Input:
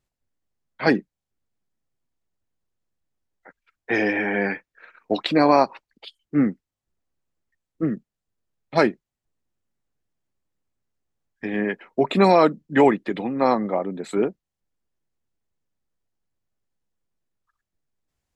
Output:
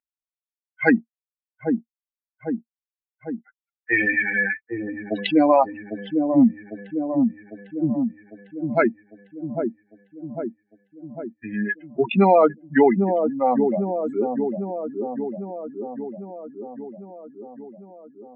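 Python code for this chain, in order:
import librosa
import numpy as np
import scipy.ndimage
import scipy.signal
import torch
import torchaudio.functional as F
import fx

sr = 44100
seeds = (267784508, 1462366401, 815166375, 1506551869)

p1 = fx.bin_expand(x, sr, power=3.0)
p2 = fx.peak_eq(p1, sr, hz=230.0, db=12.5, octaves=0.43)
p3 = fx.rider(p2, sr, range_db=4, speed_s=0.5)
p4 = p2 + (p3 * 10.0 ** (-2.0 / 20.0))
p5 = fx.cabinet(p4, sr, low_hz=140.0, low_slope=12, high_hz=2100.0, hz=(160.0, 220.0, 360.0, 1100.0), db=(-5, -7, -5, -6))
p6 = p5 + fx.echo_wet_lowpass(p5, sr, ms=801, feedback_pct=40, hz=520.0, wet_db=-9, dry=0)
y = fx.env_flatten(p6, sr, amount_pct=50)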